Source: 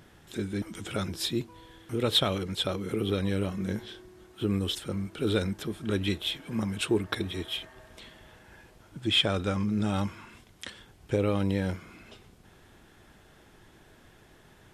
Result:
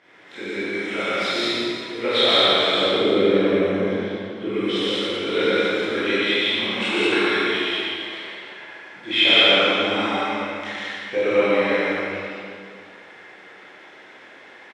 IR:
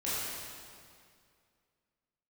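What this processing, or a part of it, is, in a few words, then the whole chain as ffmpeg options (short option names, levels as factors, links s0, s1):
station announcement: -filter_complex "[0:a]asettb=1/sr,asplit=3[s0][s1][s2];[s0]atrim=end=2.694[s3];[s1]atrim=start=2.69:end=4.47,asetpts=PTS-STARTPTS,afade=t=in:d=0.004:c=qsin,afade=t=out:st=1.776:d=0.004:c=qsin,tiltshelf=f=780:g=7.5[s4];[s2]atrim=start=4.466[s5];[s3][s4]acrossfade=d=0.004:c1=hsin:c2=qsin[s6];[s6][s5]acrossfade=d=0.004:c1=qsin:c2=hsin,highpass=450,lowpass=3900,equalizer=f=2100:t=o:w=0.41:g=9.5,aecho=1:1:116.6|189.5|279.9:0.891|0.891|0.316[s7];[1:a]atrim=start_sample=2205[s8];[s7][s8]afir=irnorm=-1:irlink=0,volume=1.33"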